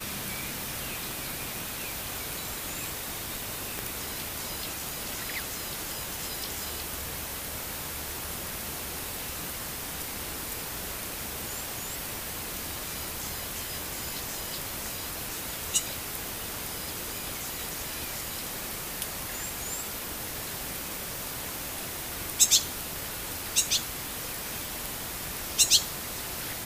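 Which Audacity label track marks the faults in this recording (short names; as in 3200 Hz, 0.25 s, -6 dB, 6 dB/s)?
3.790000	3.790000	pop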